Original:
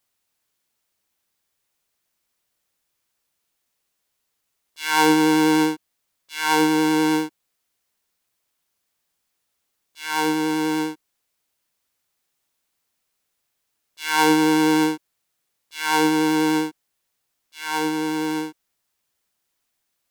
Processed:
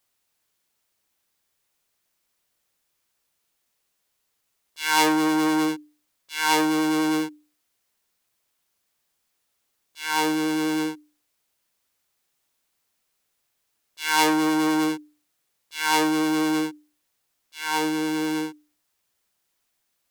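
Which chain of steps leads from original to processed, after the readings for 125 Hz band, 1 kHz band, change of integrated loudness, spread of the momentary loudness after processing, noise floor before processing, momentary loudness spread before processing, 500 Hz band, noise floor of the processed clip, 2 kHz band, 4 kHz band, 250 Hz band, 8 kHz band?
-5.5 dB, -2.5 dB, -3.0 dB, 13 LU, -76 dBFS, 16 LU, -4.5 dB, -75 dBFS, -2.0 dB, -1.0 dB, -3.0 dB, -0.5 dB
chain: hum notches 60/120/180/240/300 Hz; transformer saturation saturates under 2.5 kHz; trim +1 dB

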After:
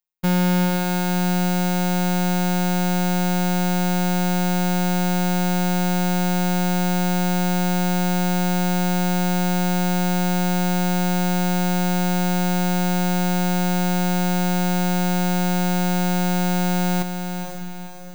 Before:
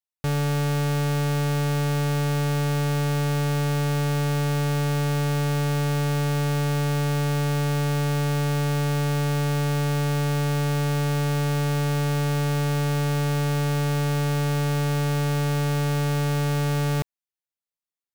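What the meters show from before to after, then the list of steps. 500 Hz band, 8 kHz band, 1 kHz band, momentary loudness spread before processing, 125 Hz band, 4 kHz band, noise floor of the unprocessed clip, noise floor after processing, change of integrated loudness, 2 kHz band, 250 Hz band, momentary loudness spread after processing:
+1.5 dB, +6.5 dB, +6.5 dB, 0 LU, no reading, +4.0 dB, under -85 dBFS, -29 dBFS, +3.0 dB, +3.5 dB, +7.5 dB, 0 LU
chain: echo that smears into a reverb 503 ms, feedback 46%, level -7 dB; robot voice 180 Hz; trim +7.5 dB

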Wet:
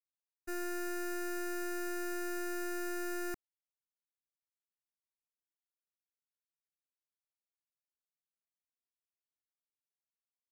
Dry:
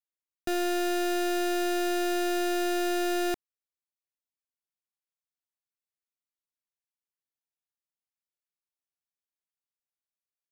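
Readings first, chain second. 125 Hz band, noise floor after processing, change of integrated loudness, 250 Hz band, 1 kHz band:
no reading, under -85 dBFS, -10.5 dB, -11.0 dB, -12.5 dB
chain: expander -24 dBFS; static phaser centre 1.4 kHz, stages 4; trim +1 dB

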